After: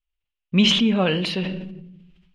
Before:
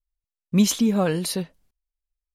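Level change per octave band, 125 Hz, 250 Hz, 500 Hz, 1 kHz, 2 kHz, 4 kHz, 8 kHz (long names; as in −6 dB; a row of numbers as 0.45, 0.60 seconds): +1.5, +1.0, +1.0, +1.5, +9.0, +10.5, −9.0 decibels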